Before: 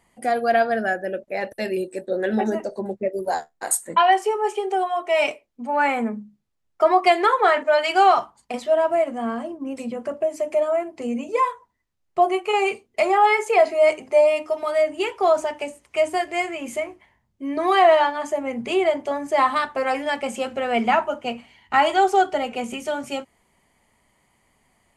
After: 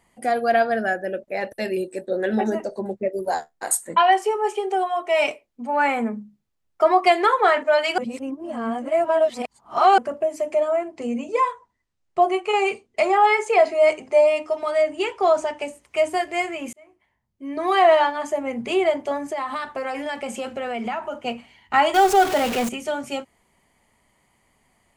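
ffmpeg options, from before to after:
-filter_complex "[0:a]asettb=1/sr,asplit=3[a][b][c];[a]atrim=end=10.514[d];[b]atrim=start=10.51:end=15.63,asetpts=PTS-STARTPTS,afade=t=in:d=0.004:c=qsin,afade=t=out:st=5.116:d=0.004:c=qsin,lowpass=f=9.4k:w=0.5412,lowpass=f=9.4k:w=1.3066[e];[c]atrim=start=15.626[f];[d][e]acrossfade=d=0.004:c1=hsin:c2=qsin[g];[g][f]acrossfade=d=0.004:c1=qsin:c2=hsin,asettb=1/sr,asplit=3[h][i][j];[h]atrim=end=19.264[k];[i]atrim=start=19.26:end=21.22,asetpts=PTS-STARTPTS,afade=t=in:d=0.004:c=qsin,afade=t=out:st=1.956:d=0.004:c=qsin,acompressor=threshold=-24dB:ratio=6:attack=3.2:release=140:knee=1:detection=peak[l];[j]atrim=start=21.216[m];[k][l]acrossfade=d=0.004:c1=hsin:c2=qsin[n];[n][m]acrossfade=d=0.004:c1=qsin:c2=hsin,asettb=1/sr,asplit=3[o][p][q];[o]atrim=end=21.944[r];[p]atrim=start=21.94:end=22.69,asetpts=PTS-STARTPTS,afade=t=in:d=0.004:c=qsin,afade=t=out:st=0.746:d=0.004:c=qsin,aeval=exprs='val(0)+0.5*0.0794*sgn(val(0))':c=same[s];[q]atrim=start=22.686[t];[r][s]acrossfade=d=0.004:c1=hsin:c2=qsin[u];[u][t]acrossfade=d=0.004:c1=qsin:c2=hsin,asplit=4[v][w][x][y];[v]atrim=end=7.982[z];[w]atrim=start=7.978:end=9.982,asetpts=PTS-STARTPTS,areverse[aa];[x]atrim=start=9.978:end=16.73,asetpts=PTS-STARTPTS,afade=t=out:st=6.748:d=0.004:c=hsin[ab];[y]atrim=start=16.73,asetpts=PTS-STARTPTS,afade=t=in:d=1.19[ac];[z][aa]acrossfade=d=0.004:c1=hsin:c2=hsin[ad];[ab][ac]concat=n=2:v=0:a=1[ae];[ad][ae]acrossfade=d=0.004:c1=hsin:c2=hsin"

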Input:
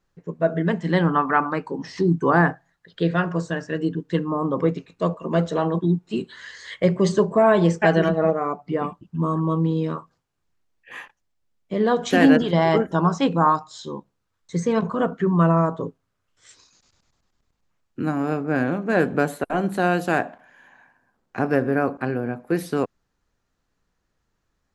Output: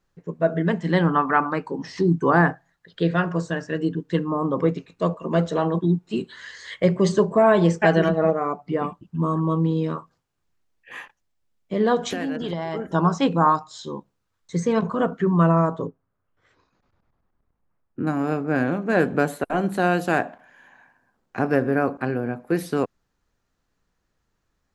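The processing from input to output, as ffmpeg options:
-filter_complex "[0:a]asettb=1/sr,asplit=3[a][b][c];[a]atrim=end=11.984[d];[b]atrim=start=11.98:end=12.93,asetpts=PTS-STARTPTS,afade=t=in:d=0.004:c=qsin,afade=t=out:st=0.946:d=0.004:c=qsin,acompressor=threshold=-23dB:ratio=12:attack=3.2:release=140:knee=1:detection=peak[e];[c]atrim=start=12.926[f];[d][e]acrossfade=d=0.004:c1=hsin:c2=qsin[g];[g][f]acrossfade=d=0.004:c1=qsin:c2=hsin,asettb=1/sr,asplit=3[h][i][j];[h]atrim=end=15.874[k];[i]atrim=start=15.87:end=18.07,asetpts=PTS-STARTPTS,afade=t=in:d=0.004:c=qsin,afade=t=out:st=2.196:d=0.004:c=qsin,lowpass=1.4k[l];[j]atrim=start=18.066[m];[k][l]acrossfade=d=0.004:c1=hsin:c2=qsin[n];[n][m]acrossfade=d=0.004:c1=qsin:c2=hsin"

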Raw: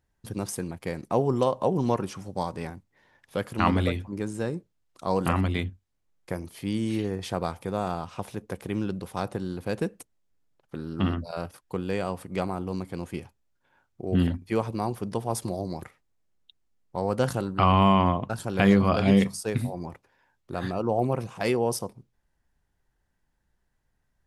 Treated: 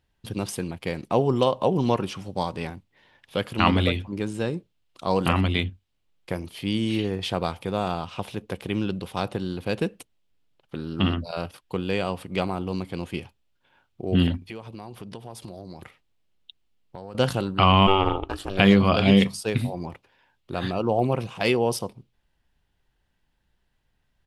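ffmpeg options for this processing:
-filter_complex "[0:a]asettb=1/sr,asplit=3[a][b][c];[a]atrim=end=14.384[d];[b]atrim=start=14.38:end=17.15,asetpts=PTS-STARTPTS,afade=t=in:d=0.004:c=qsin,afade=t=out:st=2.766:d=0.004:c=qsin,acompressor=threshold=-39dB:ratio=4:attack=3.2:release=140:knee=1:detection=peak[e];[c]atrim=start=17.146[f];[d][e]acrossfade=d=0.004:c1=hsin:c2=qsin[g];[g][f]acrossfade=d=0.004:c1=qsin:c2=hsin,asplit=3[h][i][j];[h]afade=t=out:st=17.86:d=0.02[k];[i]aeval=exprs='val(0)*sin(2*PI*190*n/s)':c=same,afade=t=in:st=17.86:d=0.02,afade=t=out:st=18.57:d=0.02[l];[j]afade=t=in:st=18.57:d=0.02[m];[k][l][m]amix=inputs=3:normalize=0,firequalizer=gain_entry='entry(1800,0);entry(2900,9);entry(6200,-3)':delay=0.05:min_phase=1,volume=2.5dB"

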